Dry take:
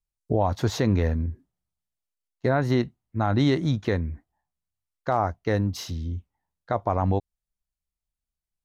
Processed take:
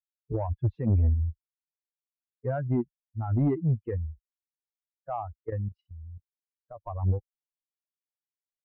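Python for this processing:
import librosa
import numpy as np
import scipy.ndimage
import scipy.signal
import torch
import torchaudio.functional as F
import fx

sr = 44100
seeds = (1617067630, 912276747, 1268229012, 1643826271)

y = fx.bin_expand(x, sr, power=3.0)
y = scipy.signal.sosfilt(scipy.signal.butter(4, 2000.0, 'lowpass', fs=sr, output='sos'), y)
y = fx.tilt_eq(y, sr, slope=-4.0)
y = fx.level_steps(y, sr, step_db=12, at=(5.35, 6.77))
y = 10.0 ** (-12.5 / 20.0) * np.tanh(y / 10.0 ** (-12.5 / 20.0))
y = y * librosa.db_to_amplitude(-5.5)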